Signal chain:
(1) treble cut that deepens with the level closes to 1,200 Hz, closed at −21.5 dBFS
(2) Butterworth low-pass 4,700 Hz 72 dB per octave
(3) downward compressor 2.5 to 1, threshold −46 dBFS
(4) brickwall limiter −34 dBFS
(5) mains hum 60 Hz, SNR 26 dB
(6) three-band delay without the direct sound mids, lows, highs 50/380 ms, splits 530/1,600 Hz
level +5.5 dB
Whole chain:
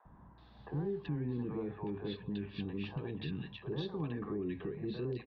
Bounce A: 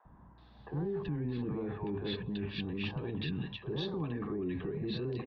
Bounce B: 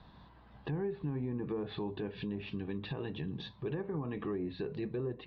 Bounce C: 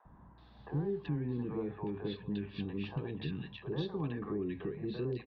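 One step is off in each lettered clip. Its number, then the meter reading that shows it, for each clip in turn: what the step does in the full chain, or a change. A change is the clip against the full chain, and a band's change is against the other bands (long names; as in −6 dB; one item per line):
3, average gain reduction 13.0 dB
6, echo-to-direct ratio 1.5 dB to none audible
4, change in integrated loudness +1.5 LU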